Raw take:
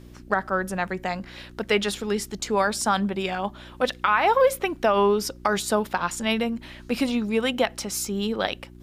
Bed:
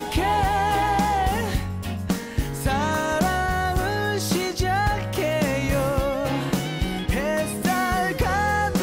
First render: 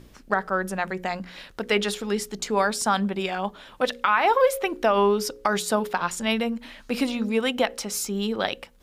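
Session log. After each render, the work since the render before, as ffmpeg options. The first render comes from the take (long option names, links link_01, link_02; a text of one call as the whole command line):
ffmpeg -i in.wav -af "bandreject=frequency=60:width_type=h:width=4,bandreject=frequency=120:width_type=h:width=4,bandreject=frequency=180:width_type=h:width=4,bandreject=frequency=240:width_type=h:width=4,bandreject=frequency=300:width_type=h:width=4,bandreject=frequency=360:width_type=h:width=4,bandreject=frequency=420:width_type=h:width=4,bandreject=frequency=480:width_type=h:width=4,bandreject=frequency=540:width_type=h:width=4" out.wav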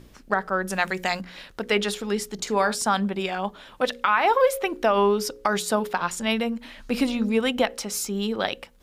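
ffmpeg -i in.wav -filter_complex "[0:a]asettb=1/sr,asplit=3[link_01][link_02][link_03];[link_01]atrim=end=0.704[link_04];[link_02]atrim=start=0.7:end=1.21,asetpts=PTS-STARTPTS,afade=type=in:duration=0.004:curve=qsin,afade=type=out:start_time=0.506:duration=0.004:curve=qsin,highshelf=frequency=2000:gain=12[link_05];[link_03]atrim=start=1.206[link_06];[link_04][link_05]acrossfade=duration=0.004:curve1=hsin:curve2=qsin[link_07];[link_07][link_06]acrossfade=duration=0.004:curve1=qsin:curve2=hsin,asettb=1/sr,asplit=3[link_08][link_09][link_10];[link_08]atrim=end=2.344[link_11];[link_09]atrim=start=2.34:end=2.75,asetpts=PTS-STARTPTS,afade=type=in:duration=0.004:curve=qsin,afade=type=out:start_time=0.406:duration=0.004:curve=qsin,asplit=2[link_12][link_13];[link_13]adelay=48,volume=-13dB[link_14];[link_12][link_14]amix=inputs=2:normalize=0,atrim=end_sample=18081[link_15];[link_10]atrim=start=2.746[link_16];[link_11][link_15]acrossfade=duration=0.004:curve1=hsin:curve2=qsin[link_17];[link_17][link_16]acrossfade=duration=0.004:curve1=qsin:curve2=hsin,asettb=1/sr,asplit=3[link_18][link_19][link_20];[link_18]atrim=end=6.774[link_21];[link_19]atrim=start=6.77:end=7.68,asetpts=PTS-STARTPTS,afade=type=in:duration=0.004:curve=qsin,afade=type=out:start_time=0.906:duration=0.004:curve=qsin,lowshelf=frequency=150:gain=7.5[link_22];[link_20]atrim=start=7.676[link_23];[link_21][link_22]acrossfade=duration=0.004:curve1=hsin:curve2=qsin[link_24];[link_24][link_23]acrossfade=duration=0.004:curve1=qsin:curve2=hsin" out.wav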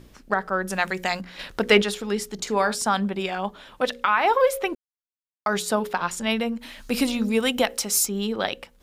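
ffmpeg -i in.wav -filter_complex "[0:a]asettb=1/sr,asplit=3[link_01][link_02][link_03];[link_01]atrim=end=1.394[link_04];[link_02]atrim=start=1.39:end=1.82,asetpts=PTS-STARTPTS,afade=type=in:duration=0.004:curve=qsin,afade=type=out:start_time=0.426:duration=0.004:curve=qsin,acontrast=70[link_05];[link_03]atrim=start=1.816[link_06];[link_04][link_05]acrossfade=duration=0.004:curve1=hsin:curve2=qsin[link_07];[link_07][link_06]acrossfade=duration=0.004:curve1=qsin:curve2=hsin,asettb=1/sr,asplit=3[link_08][link_09][link_10];[link_08]atrim=end=6.614[link_11];[link_09]atrim=start=6.61:end=8.06,asetpts=PTS-STARTPTS,afade=type=in:duration=0.004:curve=qsin,afade=type=out:start_time=1.446:duration=0.004:curve=qsin,highshelf=frequency=5300:gain=11[link_12];[link_10]atrim=start=8.056[link_13];[link_11][link_12]acrossfade=duration=0.004:curve1=hsin:curve2=qsin[link_14];[link_14][link_13]acrossfade=duration=0.004:curve1=qsin:curve2=hsin,asplit=3[link_15][link_16][link_17];[link_15]atrim=end=4.75,asetpts=PTS-STARTPTS,afade=type=out:start_time=4.746:duration=0.004:curve=hsin[link_18];[link_16]atrim=start=4.75:end=5.46,asetpts=PTS-STARTPTS,volume=0[link_19];[link_17]atrim=start=5.46,asetpts=PTS-STARTPTS,afade=type=in:duration=0.004:curve=hsin[link_20];[link_18][link_19][link_20]concat=n=3:v=0:a=1" out.wav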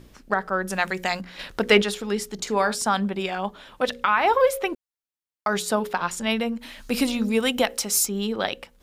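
ffmpeg -i in.wav -filter_complex "[0:a]asettb=1/sr,asplit=3[link_01][link_02][link_03];[link_01]atrim=end=3.884[link_04];[link_02]atrim=start=3.88:end=4.52,asetpts=PTS-STARTPTS,afade=type=in:duration=0.004:curve=qsin,afade=type=out:start_time=0.636:duration=0.004:curve=qsin,equalizer=frequency=81:width_type=o:width=1.3:gain=14.5[link_05];[link_03]atrim=start=4.516[link_06];[link_04][link_05]acrossfade=duration=0.004:curve1=hsin:curve2=qsin[link_07];[link_07][link_06]acrossfade=duration=0.004:curve1=qsin:curve2=hsin" out.wav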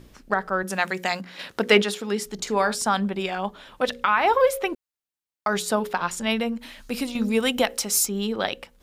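ffmpeg -i in.wav -filter_complex "[0:a]asettb=1/sr,asplit=3[link_01][link_02][link_03];[link_01]atrim=end=0.634[link_04];[link_02]atrim=start=0.63:end=2.26,asetpts=PTS-STARTPTS,afade=type=in:duration=0.004:curve=qsin,afade=type=out:start_time=1.626:duration=0.004:curve=qsin,highpass=130[link_05];[link_03]atrim=start=2.256[link_06];[link_04][link_05]acrossfade=duration=0.004:curve1=hsin:curve2=qsin[link_07];[link_07][link_06]acrossfade=duration=0.004:curve1=qsin:curve2=hsin,asplit=2[link_08][link_09];[link_08]atrim=end=7.15,asetpts=PTS-STARTPTS,afade=type=out:start_time=6.58:duration=0.57:silence=0.398107[link_10];[link_09]atrim=start=7.15,asetpts=PTS-STARTPTS,afade=type=in:duration=0.004:curve=hsin:silence=0.398107[link_11];[link_10][link_11]concat=n=2:v=0:a=1" out.wav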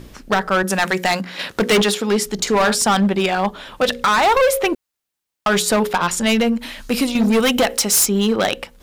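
ffmpeg -i in.wav -af "apsyclip=10dB,asoftclip=type=hard:threshold=-11.5dB" out.wav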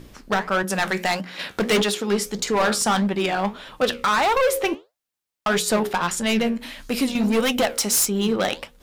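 ffmpeg -i in.wav -af "flanger=delay=6.3:depth=9.2:regen=72:speed=1.6:shape=sinusoidal" out.wav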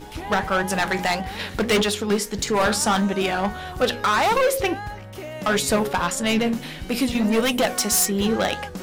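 ffmpeg -i in.wav -i bed.wav -filter_complex "[1:a]volume=-11dB[link_01];[0:a][link_01]amix=inputs=2:normalize=0" out.wav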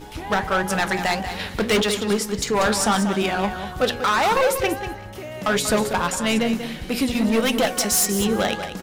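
ffmpeg -i in.wav -af "aecho=1:1:189|378:0.316|0.0474" out.wav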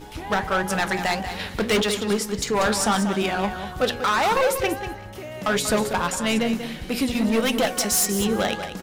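ffmpeg -i in.wav -af "volume=-1.5dB" out.wav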